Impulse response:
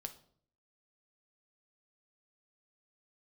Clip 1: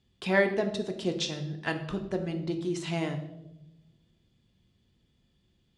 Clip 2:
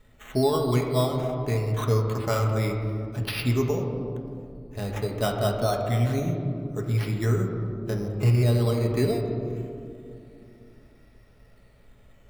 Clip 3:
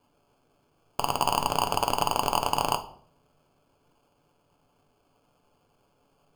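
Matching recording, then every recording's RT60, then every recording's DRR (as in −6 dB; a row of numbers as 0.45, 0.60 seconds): 3; 0.90, 2.5, 0.55 seconds; 4.0, 0.0, 6.5 decibels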